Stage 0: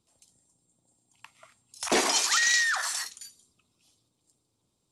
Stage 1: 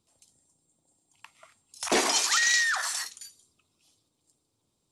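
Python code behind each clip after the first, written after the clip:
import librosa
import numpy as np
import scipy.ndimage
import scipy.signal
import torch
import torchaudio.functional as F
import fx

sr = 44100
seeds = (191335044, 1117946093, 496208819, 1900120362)

y = fx.hum_notches(x, sr, base_hz=60, count=4)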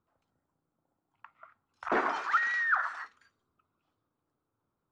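y = fx.lowpass_res(x, sr, hz=1400.0, q=3.5)
y = y * librosa.db_to_amplitude(-5.5)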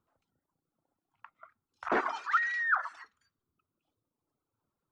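y = fx.dereverb_blind(x, sr, rt60_s=1.3)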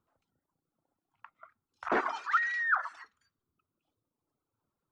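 y = x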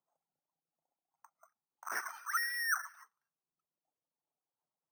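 y = fx.peak_eq(x, sr, hz=160.0, db=13.0, octaves=0.5)
y = fx.auto_wah(y, sr, base_hz=750.0, top_hz=1700.0, q=2.8, full_db=-30.5, direction='up')
y = np.repeat(y[::6], 6)[:len(y)]
y = y * librosa.db_to_amplitude(-3.0)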